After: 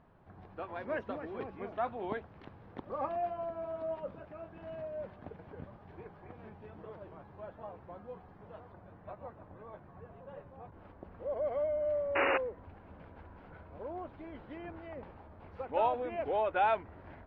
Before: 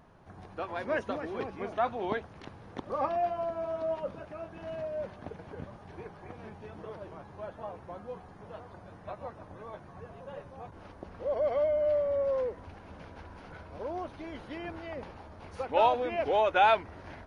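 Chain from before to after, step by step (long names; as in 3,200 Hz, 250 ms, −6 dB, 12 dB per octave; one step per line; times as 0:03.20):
high-shelf EQ 5,100 Hz +8.5 dB, from 0:08.72 −3 dB
0:12.15–0:12.38: sound drawn into the spectrogram noise 260–2,900 Hz −23 dBFS
high-frequency loss of the air 380 metres
level −4 dB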